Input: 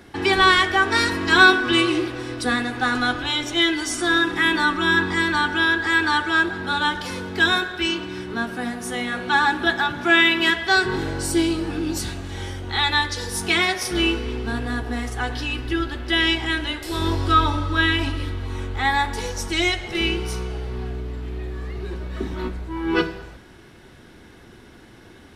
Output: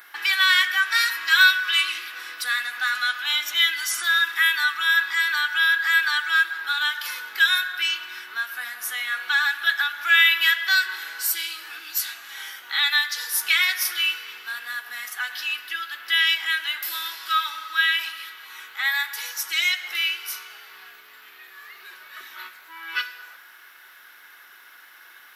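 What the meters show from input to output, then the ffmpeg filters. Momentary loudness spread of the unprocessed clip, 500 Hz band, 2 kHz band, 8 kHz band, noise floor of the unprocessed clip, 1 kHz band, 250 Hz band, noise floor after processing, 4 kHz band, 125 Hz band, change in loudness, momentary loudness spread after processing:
14 LU, under -25 dB, +0.5 dB, +1.0 dB, -47 dBFS, -8.0 dB, under -35 dB, -49 dBFS, +1.0 dB, under -40 dB, -0.5 dB, 15 LU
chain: -filter_complex "[0:a]acrossover=split=1800[a][b];[a]acompressor=threshold=-33dB:ratio=10[c];[b]aexciter=amount=15.7:drive=2.7:freq=12k[d];[c][d]amix=inputs=2:normalize=0,highpass=f=1.4k:t=q:w=2.1"

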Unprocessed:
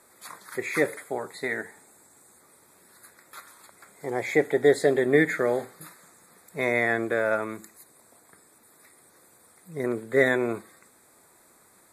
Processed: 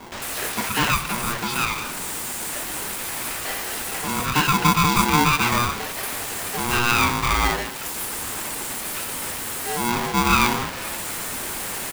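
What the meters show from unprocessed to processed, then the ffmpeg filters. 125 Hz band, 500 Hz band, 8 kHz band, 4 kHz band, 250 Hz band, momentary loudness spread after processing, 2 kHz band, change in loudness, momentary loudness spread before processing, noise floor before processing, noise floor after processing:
+12.0 dB, -7.5 dB, +19.5 dB, +19.0 dB, +4.5 dB, 10 LU, +5.0 dB, +3.0 dB, 19 LU, -59 dBFS, -31 dBFS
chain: -filter_complex "[0:a]aeval=exprs='val(0)+0.5*0.0447*sgn(val(0))':c=same,acrossover=split=450|6000[a][b][c];[b]adelay=120[d];[c]adelay=220[e];[a][d][e]amix=inputs=3:normalize=0,aeval=exprs='val(0)*sgn(sin(2*PI*600*n/s))':c=same,volume=4dB"

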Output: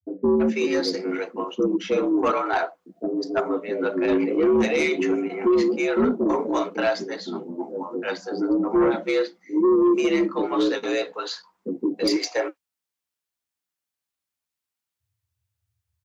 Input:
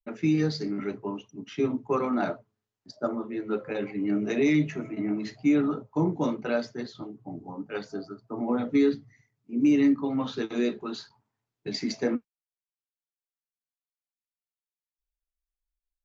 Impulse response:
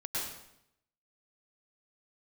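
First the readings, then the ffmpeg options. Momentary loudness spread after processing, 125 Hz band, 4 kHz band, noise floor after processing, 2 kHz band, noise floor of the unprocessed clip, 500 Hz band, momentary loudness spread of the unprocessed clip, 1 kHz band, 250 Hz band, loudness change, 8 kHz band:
11 LU, -6.0 dB, +8.0 dB, under -85 dBFS, +8.0 dB, under -85 dBFS, +9.0 dB, 15 LU, +8.5 dB, +3.5 dB, +4.5 dB, n/a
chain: -filter_complex "[0:a]afreqshift=70,acrossover=split=470[a][b];[b]adelay=330[c];[a][c]amix=inputs=2:normalize=0,aeval=exprs='0.188*sin(PI/2*1.78*val(0)/0.188)':c=same"

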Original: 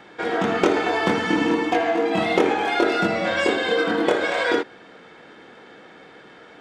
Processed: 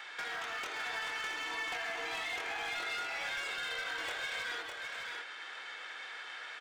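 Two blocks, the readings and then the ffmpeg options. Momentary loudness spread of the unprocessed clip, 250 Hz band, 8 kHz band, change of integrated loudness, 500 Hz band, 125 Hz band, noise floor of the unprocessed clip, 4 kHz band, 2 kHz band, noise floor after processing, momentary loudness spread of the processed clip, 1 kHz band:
3 LU, -35.0 dB, -6.5 dB, -16.5 dB, -26.5 dB, under -25 dB, -47 dBFS, -9.0 dB, -10.5 dB, -47 dBFS, 7 LU, -17.0 dB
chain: -filter_complex "[0:a]highpass=1.5k,acompressor=threshold=-40dB:ratio=16,asoftclip=type=hard:threshold=-40dB,asplit=2[a][b];[b]aecho=0:1:606:0.596[c];[a][c]amix=inputs=2:normalize=0,volume=5dB"

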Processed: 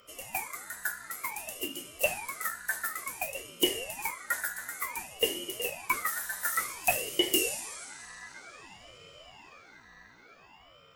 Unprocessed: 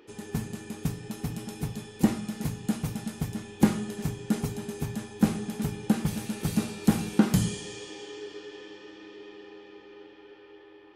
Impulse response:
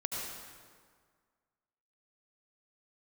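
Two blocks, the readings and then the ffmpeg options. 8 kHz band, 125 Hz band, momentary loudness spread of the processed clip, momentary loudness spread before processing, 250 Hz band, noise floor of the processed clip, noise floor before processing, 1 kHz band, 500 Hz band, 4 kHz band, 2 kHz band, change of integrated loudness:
+6.0 dB, -25.5 dB, 20 LU, 20 LU, -15.5 dB, -57 dBFS, -52 dBFS, +3.5 dB, -0.5 dB, +8.5 dB, +9.5 dB, -1.5 dB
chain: -af "afftfilt=real='real(if(lt(b,960),b+48*(1-2*mod(floor(b/48),2)),b),0)':imag='imag(if(lt(b,960),b+48*(1-2*mod(floor(b/48),2)),b),0)':win_size=2048:overlap=0.75,equalizer=f=500:t=o:w=1:g=10,equalizer=f=2k:t=o:w=1:g=-11,equalizer=f=4k:t=o:w=1:g=-5,afreqshift=400,aeval=exprs='val(0)+0.00126*(sin(2*PI*60*n/s)+sin(2*PI*2*60*n/s)/2+sin(2*PI*3*60*n/s)/3+sin(2*PI*4*60*n/s)/4+sin(2*PI*5*60*n/s)/5)':c=same,aemphasis=mode=production:type=75kf,acontrast=31,aeval=exprs='val(0)*sin(2*PI*700*n/s+700*0.85/0.55*sin(2*PI*0.55*n/s))':c=same,volume=-7dB"

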